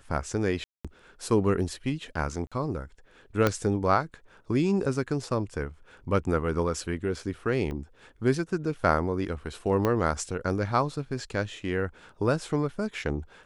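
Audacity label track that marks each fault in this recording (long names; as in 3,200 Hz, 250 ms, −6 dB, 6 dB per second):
0.640000	0.850000	drop-out 206 ms
2.470000	2.520000	drop-out 46 ms
3.470000	3.470000	click −9 dBFS
7.710000	7.710000	drop-out 3.6 ms
9.850000	9.850000	click −13 dBFS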